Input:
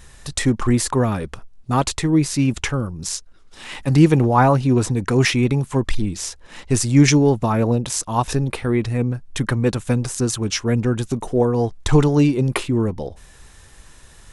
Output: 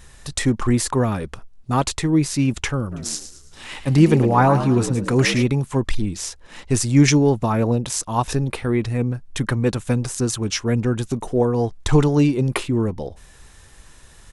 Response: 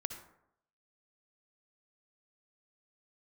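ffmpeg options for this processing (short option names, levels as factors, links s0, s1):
-filter_complex "[0:a]asplit=3[s0][s1][s2];[s0]afade=t=out:st=2.91:d=0.02[s3];[s1]asplit=5[s4][s5][s6][s7][s8];[s5]adelay=109,afreqshift=67,volume=0.282[s9];[s6]adelay=218,afreqshift=134,volume=0.116[s10];[s7]adelay=327,afreqshift=201,volume=0.0473[s11];[s8]adelay=436,afreqshift=268,volume=0.0195[s12];[s4][s9][s10][s11][s12]amix=inputs=5:normalize=0,afade=t=in:st=2.91:d=0.02,afade=t=out:st=5.42:d=0.02[s13];[s2]afade=t=in:st=5.42:d=0.02[s14];[s3][s13][s14]amix=inputs=3:normalize=0,volume=0.891"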